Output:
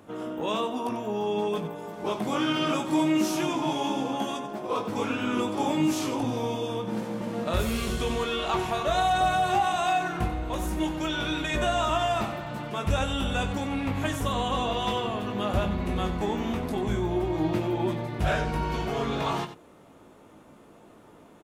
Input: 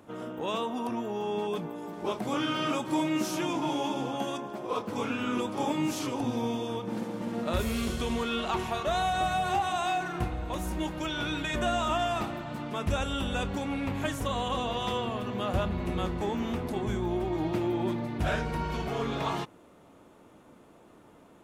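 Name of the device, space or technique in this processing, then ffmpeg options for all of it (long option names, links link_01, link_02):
slapback doubling: -filter_complex "[0:a]asplit=3[link_01][link_02][link_03];[link_02]adelay=19,volume=-7dB[link_04];[link_03]adelay=93,volume=-11dB[link_05];[link_01][link_04][link_05]amix=inputs=3:normalize=0,volume=2dB"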